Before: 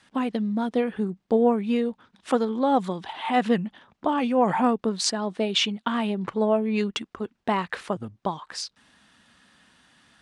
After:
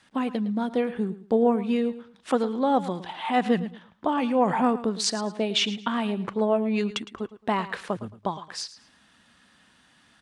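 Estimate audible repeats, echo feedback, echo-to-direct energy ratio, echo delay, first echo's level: 2, 25%, −14.5 dB, 110 ms, −15.0 dB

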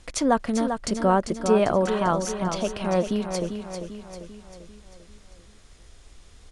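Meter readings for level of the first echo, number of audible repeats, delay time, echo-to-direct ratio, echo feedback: −7.5 dB, 5, 395 ms, −6.0 dB, 51%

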